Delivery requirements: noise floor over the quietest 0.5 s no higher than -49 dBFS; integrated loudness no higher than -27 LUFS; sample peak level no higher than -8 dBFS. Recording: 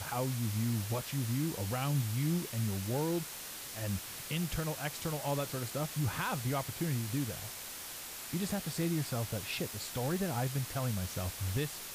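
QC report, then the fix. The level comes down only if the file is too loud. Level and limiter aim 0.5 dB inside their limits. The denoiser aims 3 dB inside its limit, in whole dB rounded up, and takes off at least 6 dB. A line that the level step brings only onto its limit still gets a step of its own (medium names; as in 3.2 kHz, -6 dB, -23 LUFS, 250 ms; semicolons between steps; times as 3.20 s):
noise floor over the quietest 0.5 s -45 dBFS: fail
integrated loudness -35.5 LUFS: pass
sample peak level -22.0 dBFS: pass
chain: noise reduction 7 dB, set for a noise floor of -45 dBFS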